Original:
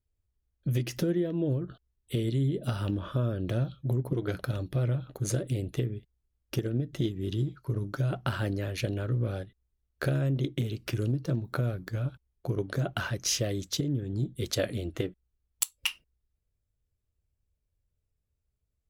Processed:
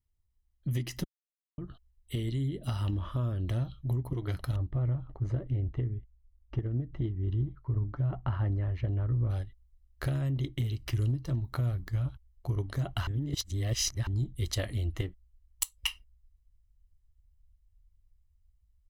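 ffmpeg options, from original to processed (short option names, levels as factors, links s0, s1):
-filter_complex "[0:a]asplit=3[s0][s1][s2];[s0]afade=t=out:st=4.55:d=0.02[s3];[s1]lowpass=1400,afade=t=in:st=4.55:d=0.02,afade=t=out:st=9.29:d=0.02[s4];[s2]afade=t=in:st=9.29:d=0.02[s5];[s3][s4][s5]amix=inputs=3:normalize=0,asplit=5[s6][s7][s8][s9][s10];[s6]atrim=end=1.04,asetpts=PTS-STARTPTS,afade=t=out:st=1.036:d=0.004:c=hsin[s11];[s7]atrim=start=1.04:end=1.58,asetpts=PTS-STARTPTS,volume=0[s12];[s8]atrim=start=1.58:end=13.072,asetpts=PTS-STARTPTS,afade=t=in:d=0.004:c=hsin[s13];[s9]atrim=start=13.068:end=14.072,asetpts=PTS-STARTPTS,areverse[s14];[s10]atrim=start=14.068[s15];[s11][s12][s13]concat=n=3:v=0:a=1[s16];[s16][s14]acrossfade=d=0.004:c1=hsin:c2=hsin[s17];[s17][s15]acrossfade=d=0.004:c1=hsin:c2=hsin,aecho=1:1:1:0.51,asubboost=boost=11:cutoff=52,volume=0.668"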